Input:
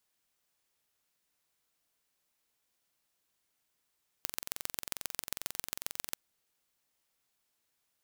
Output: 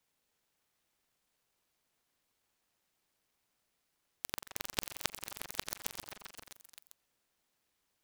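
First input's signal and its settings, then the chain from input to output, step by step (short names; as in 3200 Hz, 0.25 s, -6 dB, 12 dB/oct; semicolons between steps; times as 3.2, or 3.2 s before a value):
pulse train 22.3/s, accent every 3, -5.5 dBFS 1.89 s
on a send: delay with a stepping band-pass 0.13 s, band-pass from 950 Hz, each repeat 0.7 oct, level -1 dB; on the sum: noise-modulated delay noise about 1200 Hz, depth 0.19 ms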